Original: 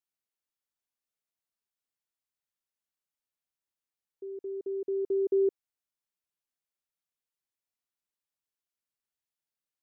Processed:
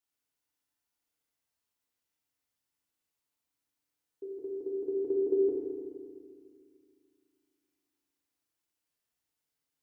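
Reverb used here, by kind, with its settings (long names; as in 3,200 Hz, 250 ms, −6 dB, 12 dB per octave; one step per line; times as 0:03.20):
feedback delay network reverb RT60 2 s, low-frequency decay 1.45×, high-frequency decay 0.8×, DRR −3 dB
level +1 dB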